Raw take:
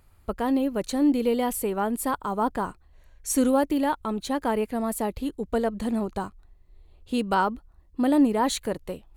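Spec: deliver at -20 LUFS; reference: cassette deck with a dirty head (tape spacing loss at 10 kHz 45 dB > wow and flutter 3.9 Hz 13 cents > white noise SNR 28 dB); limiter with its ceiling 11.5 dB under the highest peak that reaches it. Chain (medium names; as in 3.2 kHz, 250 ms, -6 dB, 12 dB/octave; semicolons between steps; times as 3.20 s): peak limiter -22.5 dBFS; tape spacing loss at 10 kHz 45 dB; wow and flutter 3.9 Hz 13 cents; white noise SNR 28 dB; trim +14 dB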